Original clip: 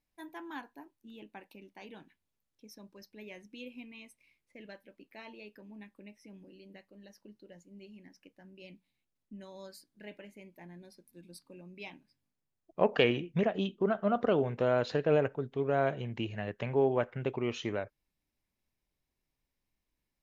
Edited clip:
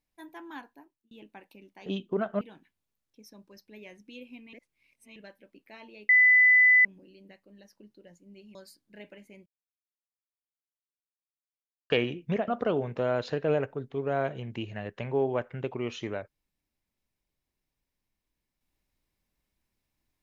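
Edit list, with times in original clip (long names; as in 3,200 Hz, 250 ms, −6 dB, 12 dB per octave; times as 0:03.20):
0:00.66–0:01.11: fade out
0:03.98–0:04.61: reverse
0:05.54–0:06.30: beep over 2,000 Hz −15.5 dBFS
0:08.00–0:09.62: remove
0:10.53–0:12.97: silence
0:13.55–0:14.10: move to 0:01.86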